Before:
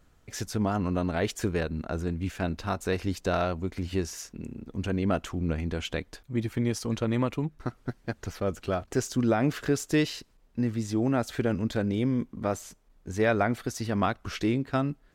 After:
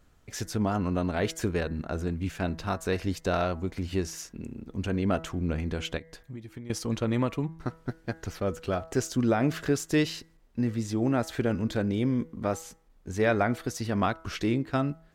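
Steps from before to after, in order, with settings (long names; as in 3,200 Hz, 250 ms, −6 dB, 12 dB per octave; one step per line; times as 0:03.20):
hum removal 162.7 Hz, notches 13
0:05.97–0:06.70: downward compressor 12 to 1, threshold −38 dBFS, peak gain reduction 16 dB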